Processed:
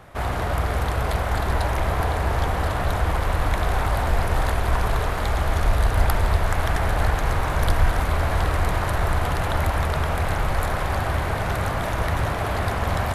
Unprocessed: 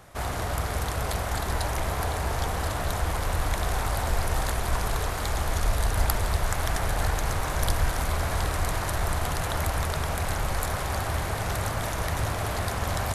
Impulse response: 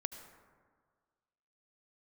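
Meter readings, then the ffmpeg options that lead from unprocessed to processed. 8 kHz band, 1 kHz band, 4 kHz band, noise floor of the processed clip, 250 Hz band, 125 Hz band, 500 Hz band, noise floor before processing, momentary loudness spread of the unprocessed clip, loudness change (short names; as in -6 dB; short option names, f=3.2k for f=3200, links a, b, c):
-4.5 dB, +5.0 dB, +1.0 dB, -26 dBFS, +5.0 dB, +5.5 dB, +5.5 dB, -30 dBFS, 2 LU, +4.5 dB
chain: -filter_complex "[0:a]asplit=2[a][b];[1:a]atrim=start_sample=2205,lowpass=3.9k[c];[b][c]afir=irnorm=-1:irlink=0,volume=5dB[d];[a][d]amix=inputs=2:normalize=0,volume=-3dB"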